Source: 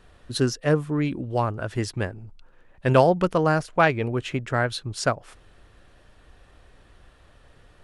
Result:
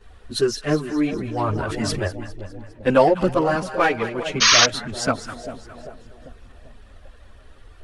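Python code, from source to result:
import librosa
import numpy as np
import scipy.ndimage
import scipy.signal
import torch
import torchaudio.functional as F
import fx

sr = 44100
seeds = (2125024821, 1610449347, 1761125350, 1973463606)

p1 = fx.highpass(x, sr, hz=170.0, slope=12, at=(3.54, 4.26))
p2 = 10.0 ** (-21.0 / 20.0) * np.tanh(p1 / 10.0 ** (-21.0 / 20.0))
p3 = p1 + (p2 * 10.0 ** (-5.5 / 20.0))
p4 = fx.echo_split(p3, sr, split_hz=770.0, low_ms=394, high_ms=204, feedback_pct=52, wet_db=-11)
p5 = fx.spec_paint(p4, sr, seeds[0], shape='noise', start_s=4.4, length_s=0.25, low_hz=950.0, high_hz=6600.0, level_db=-13.0)
p6 = fx.chorus_voices(p5, sr, voices=6, hz=0.72, base_ms=12, depth_ms=2.7, mix_pct=70)
p7 = fx.sustainer(p6, sr, db_per_s=22.0, at=(1.13, 2.08))
y = p7 * 10.0 ** (1.5 / 20.0)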